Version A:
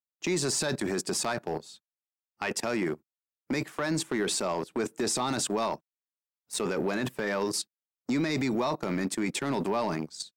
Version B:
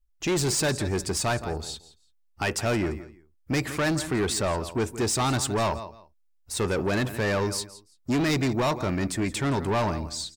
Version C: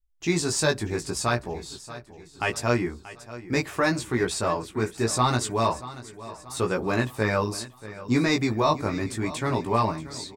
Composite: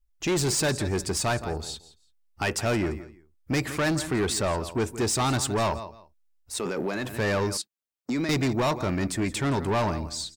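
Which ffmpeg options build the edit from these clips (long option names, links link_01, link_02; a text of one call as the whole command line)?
ffmpeg -i take0.wav -i take1.wav -filter_complex "[0:a]asplit=2[link_01][link_02];[1:a]asplit=3[link_03][link_04][link_05];[link_03]atrim=end=6.64[link_06];[link_01]atrim=start=6.4:end=7.17[link_07];[link_04]atrim=start=6.93:end=7.572[link_08];[link_02]atrim=start=7.568:end=8.292[link_09];[link_05]atrim=start=8.288[link_10];[link_06][link_07]acrossfade=duration=0.24:curve1=tri:curve2=tri[link_11];[link_11][link_08]acrossfade=duration=0.24:curve1=tri:curve2=tri[link_12];[link_12][link_09]acrossfade=duration=0.004:curve1=hsin:curve2=hsin[link_13];[link_13][link_10]acrossfade=duration=0.004:curve1=hsin:curve2=hsin" out.wav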